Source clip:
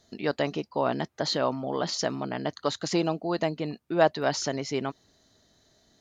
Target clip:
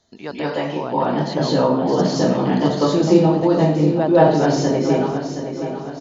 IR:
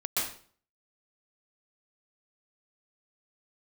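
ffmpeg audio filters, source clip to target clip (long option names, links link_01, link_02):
-filter_complex "[0:a]acrossover=split=480[link_01][link_02];[link_01]dynaudnorm=framelen=320:gausssize=7:maxgain=15dB[link_03];[link_02]equalizer=frequency=920:width=3:gain=6.5[link_04];[link_03][link_04]amix=inputs=2:normalize=0,aecho=1:1:721|1442|2163|2884:0.282|0.104|0.0386|0.0143,aresample=16000,aresample=44100,asettb=1/sr,asplit=3[link_05][link_06][link_07];[link_05]atrim=end=2.104[link_08];[link_06]atrim=start=2.1:end=2.69,asetpts=PTS-STARTPTS,afade=type=in:duration=0.004:curve=qsin,afade=type=out:start_time=0.586:duration=0.004:curve=qsin,highshelf=frequency=2100:gain=8.5[link_09];[link_07]atrim=start=2.686[link_10];[link_08][link_09]acrossfade=duration=0.004:curve1=hsin:curve2=qsin[link_11];[link_11][link_10]acrossfade=duration=0.004:curve1=qsin:curve2=hsin[link_12];[1:a]atrim=start_sample=2205,asetrate=32634,aresample=44100[link_13];[link_12][link_13]afir=irnorm=-1:irlink=0,asplit=2[link_14][link_15];[link_15]acompressor=threshold=-25dB:ratio=6,volume=2dB[link_16];[link_14][link_16]amix=inputs=2:normalize=0,volume=-9dB"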